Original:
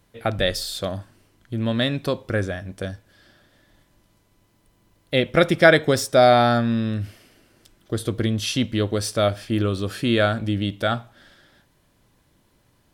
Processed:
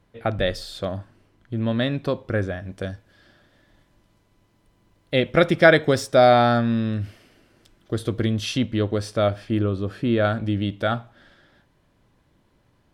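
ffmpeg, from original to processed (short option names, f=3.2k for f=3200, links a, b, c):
-af "asetnsamples=n=441:p=0,asendcmd='2.63 lowpass f 4200;8.58 lowpass f 2100;9.59 lowpass f 1000;10.25 lowpass f 2600',lowpass=f=2.2k:p=1"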